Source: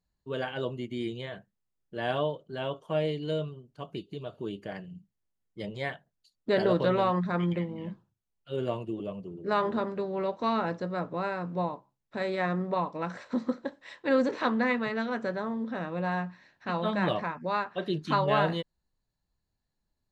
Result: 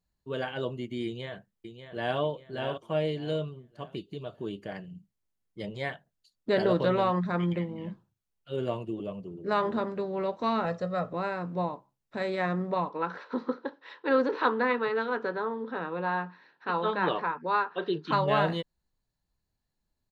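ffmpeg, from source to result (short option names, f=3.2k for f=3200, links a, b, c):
-filter_complex "[0:a]asplit=2[a][b];[b]afade=t=in:st=1.05:d=0.01,afade=t=out:st=2.18:d=0.01,aecho=0:1:590|1180|1770|2360:0.354813|0.124185|0.0434646|0.0152126[c];[a][c]amix=inputs=2:normalize=0,asettb=1/sr,asplit=3[d][e][f];[d]atrim=end=10.654[g];[e]atrim=start=10.65:end=11.13,asetpts=PTS-STARTPTS,afade=t=in:d=0.004:c=qsin,afade=t=out:st=0.476:d=0.004:c=qsin,aecho=1:1:1.6:0.65,atrim=end_sample=21168[h];[f]atrim=start=11.126[i];[g][h]acrossfade=d=0.004:c1=hsin:c2=qsin[j];[j][i]acrossfade=d=0.004:c1=qsin:c2=hsin,asplit=3[k][l][m];[k]afade=t=out:st=12.89:d=0.02[n];[l]highpass=f=170:w=0.5412,highpass=f=170:w=1.3066,equalizer=f=210:t=q:w=4:g=-9,equalizer=f=440:t=q:w=4:g=8,equalizer=f=630:t=q:w=4:g=-7,equalizer=f=930:t=q:w=4:g=6,equalizer=f=1.4k:t=q:w=4:g=6,equalizer=f=2.1k:t=q:w=4:g=-4,lowpass=f=4.6k:w=0.5412,lowpass=f=4.6k:w=1.3066,afade=t=in:st=12.89:d=0.02,afade=t=out:st=18.11:d=0.02[o];[m]afade=t=in:st=18.11:d=0.02[p];[n][o][p]amix=inputs=3:normalize=0"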